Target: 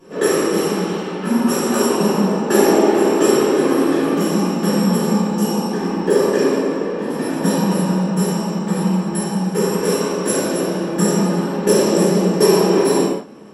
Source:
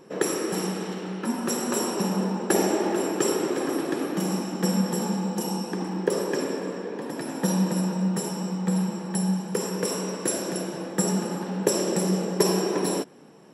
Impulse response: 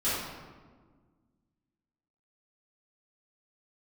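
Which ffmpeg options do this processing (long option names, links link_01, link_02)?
-filter_complex "[1:a]atrim=start_sample=2205,afade=type=out:start_time=0.25:duration=0.01,atrim=end_sample=11466,asetrate=40572,aresample=44100[link_01];[0:a][link_01]afir=irnorm=-1:irlink=0,volume=-1dB"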